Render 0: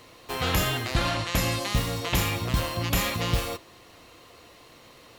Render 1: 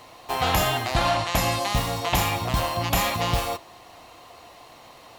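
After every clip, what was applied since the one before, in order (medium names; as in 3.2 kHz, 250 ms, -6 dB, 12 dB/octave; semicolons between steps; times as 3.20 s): FFT filter 500 Hz 0 dB, 740 Hz +12 dB, 1.4 kHz +2 dB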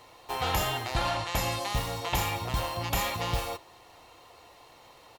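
comb 2.2 ms, depth 31%; trim -6.5 dB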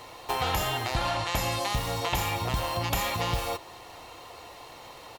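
compression 3:1, threshold -35 dBFS, peak gain reduction 9 dB; trim +8 dB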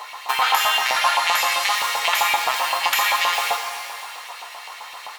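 LFO high-pass saw up 7.7 Hz 770–2700 Hz; pitch-shifted reverb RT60 1.9 s, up +12 st, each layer -8 dB, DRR 5.5 dB; trim +7.5 dB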